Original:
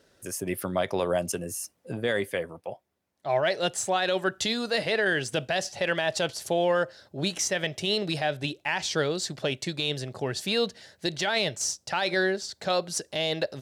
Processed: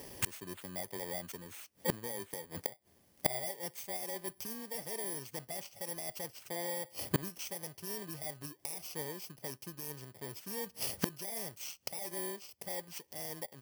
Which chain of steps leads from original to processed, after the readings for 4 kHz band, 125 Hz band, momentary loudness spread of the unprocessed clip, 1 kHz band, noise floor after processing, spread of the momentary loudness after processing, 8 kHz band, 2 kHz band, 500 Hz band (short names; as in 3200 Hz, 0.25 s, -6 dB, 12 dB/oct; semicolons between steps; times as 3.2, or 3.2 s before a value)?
-16.5 dB, -10.5 dB, 8 LU, -15.0 dB, -68 dBFS, 7 LU, -8.5 dB, -18.0 dB, -16.0 dB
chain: FFT order left unsorted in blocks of 32 samples; flipped gate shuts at -30 dBFS, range -28 dB; gain +13.5 dB